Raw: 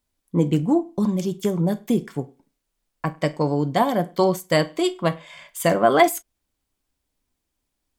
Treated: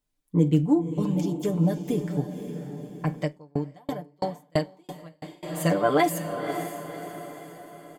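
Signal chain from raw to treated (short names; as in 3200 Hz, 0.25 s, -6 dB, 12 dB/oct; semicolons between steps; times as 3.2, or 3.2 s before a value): low shelf 410 Hz +4 dB; comb 6.7 ms, depth 72%; diffused feedback echo 0.542 s, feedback 49%, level -8.5 dB; 3.22–5.43 dB-ramp tremolo decaying 3 Hz, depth 40 dB; gain -7.5 dB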